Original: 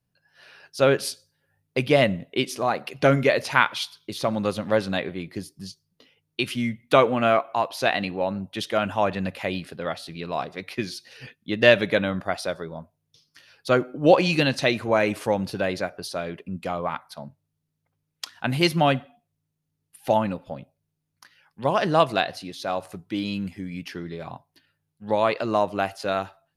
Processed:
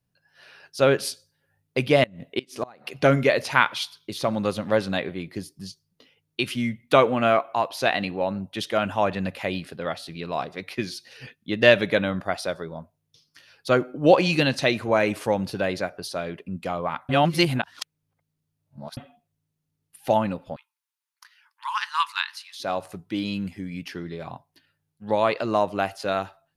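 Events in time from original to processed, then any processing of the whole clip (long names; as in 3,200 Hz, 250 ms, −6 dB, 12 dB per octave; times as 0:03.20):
0:02.03–0:02.92: gate with flip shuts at −13 dBFS, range −24 dB
0:17.09–0:18.97: reverse
0:20.56–0:22.60: linear-phase brick-wall high-pass 860 Hz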